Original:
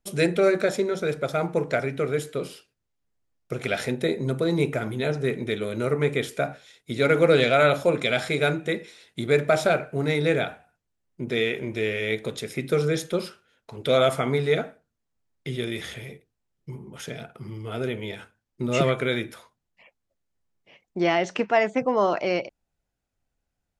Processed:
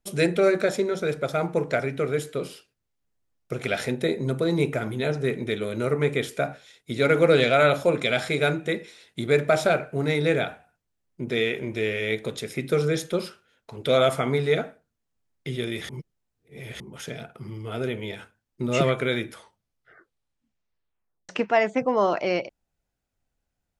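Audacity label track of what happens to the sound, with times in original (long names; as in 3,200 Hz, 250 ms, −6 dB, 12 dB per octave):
15.890000	16.800000	reverse
19.290000	19.290000	tape stop 2.00 s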